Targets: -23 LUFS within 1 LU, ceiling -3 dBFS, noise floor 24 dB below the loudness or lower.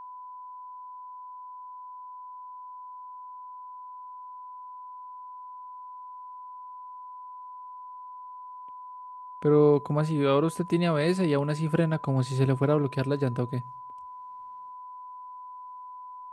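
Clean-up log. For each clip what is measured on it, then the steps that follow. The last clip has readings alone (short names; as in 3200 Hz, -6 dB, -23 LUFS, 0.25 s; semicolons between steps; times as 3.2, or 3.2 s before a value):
steady tone 1000 Hz; tone level -40 dBFS; loudness -25.5 LUFS; peak -10.5 dBFS; loudness target -23.0 LUFS
-> notch 1000 Hz, Q 30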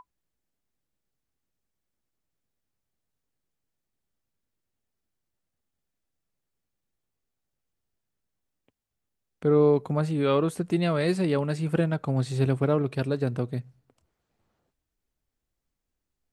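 steady tone none; loudness -25.5 LUFS; peak -11.0 dBFS; loudness target -23.0 LUFS
-> gain +2.5 dB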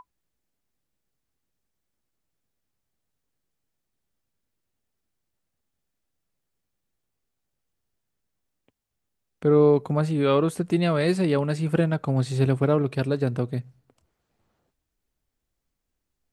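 loudness -23.0 LUFS; peak -8.5 dBFS; noise floor -81 dBFS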